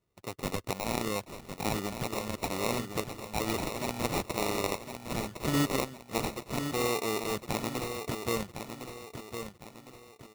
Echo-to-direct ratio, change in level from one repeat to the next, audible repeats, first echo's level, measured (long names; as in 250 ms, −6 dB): −7.5 dB, −8.0 dB, 4, −8.0 dB